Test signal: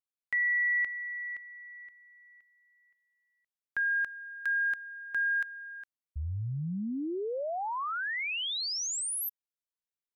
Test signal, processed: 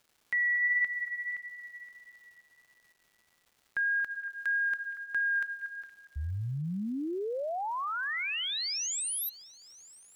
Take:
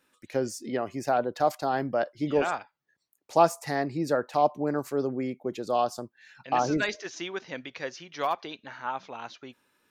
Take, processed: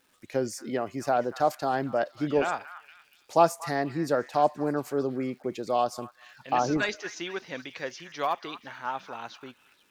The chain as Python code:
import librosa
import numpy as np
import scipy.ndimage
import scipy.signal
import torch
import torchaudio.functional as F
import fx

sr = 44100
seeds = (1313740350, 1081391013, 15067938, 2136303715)

y = fx.vibrato(x, sr, rate_hz=1.6, depth_cents=9.0)
y = fx.echo_stepped(y, sr, ms=234, hz=1500.0, octaves=0.7, feedback_pct=70, wet_db=-11.0)
y = fx.dmg_crackle(y, sr, seeds[0], per_s=530.0, level_db=-55.0)